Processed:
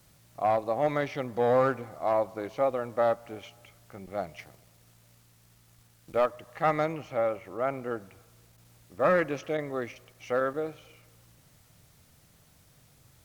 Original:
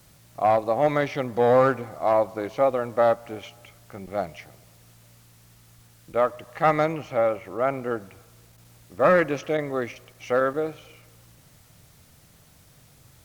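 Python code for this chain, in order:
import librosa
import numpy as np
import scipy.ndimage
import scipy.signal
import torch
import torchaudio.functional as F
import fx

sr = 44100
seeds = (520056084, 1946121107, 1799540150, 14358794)

y = fx.leveller(x, sr, passes=1, at=(4.38, 6.26))
y = y * 10.0 ** (-5.5 / 20.0)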